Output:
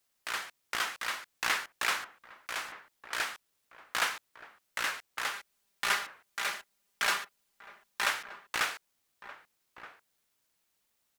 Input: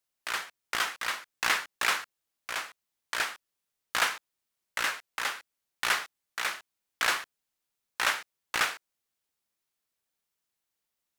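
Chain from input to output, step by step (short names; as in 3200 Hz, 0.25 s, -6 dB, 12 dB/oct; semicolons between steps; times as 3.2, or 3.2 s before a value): G.711 law mismatch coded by mu; 5.33–8.08 comb 5 ms, depth 60%; outdoor echo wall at 210 m, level -13 dB; gain -4 dB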